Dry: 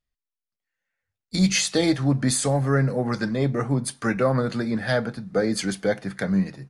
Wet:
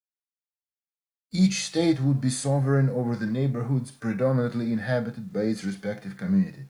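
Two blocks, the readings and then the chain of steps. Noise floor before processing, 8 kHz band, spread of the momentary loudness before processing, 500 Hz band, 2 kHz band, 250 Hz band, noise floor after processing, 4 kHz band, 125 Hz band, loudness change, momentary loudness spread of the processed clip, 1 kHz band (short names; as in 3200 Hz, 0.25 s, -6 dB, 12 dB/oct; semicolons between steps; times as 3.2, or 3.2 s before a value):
under -85 dBFS, -7.5 dB, 6 LU, -3.5 dB, -7.0 dB, -1.0 dB, under -85 dBFS, -7.0 dB, 0.0 dB, -2.5 dB, 9 LU, -6.5 dB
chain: requantised 10-bit, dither none; harmonic-percussive split percussive -16 dB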